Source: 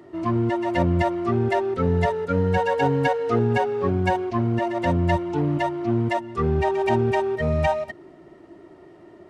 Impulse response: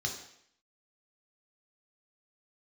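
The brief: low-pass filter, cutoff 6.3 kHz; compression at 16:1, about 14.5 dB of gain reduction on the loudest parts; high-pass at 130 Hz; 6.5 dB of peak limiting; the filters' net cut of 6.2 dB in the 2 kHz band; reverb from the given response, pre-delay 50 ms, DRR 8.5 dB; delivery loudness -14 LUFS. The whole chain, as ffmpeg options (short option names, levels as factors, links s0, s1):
-filter_complex "[0:a]highpass=130,lowpass=6300,equalizer=f=2000:t=o:g=-7.5,acompressor=threshold=0.0251:ratio=16,alimiter=level_in=1.88:limit=0.0631:level=0:latency=1,volume=0.531,asplit=2[s0][s1];[1:a]atrim=start_sample=2205,adelay=50[s2];[s1][s2]afir=irnorm=-1:irlink=0,volume=0.251[s3];[s0][s3]amix=inputs=2:normalize=0,volume=16.8"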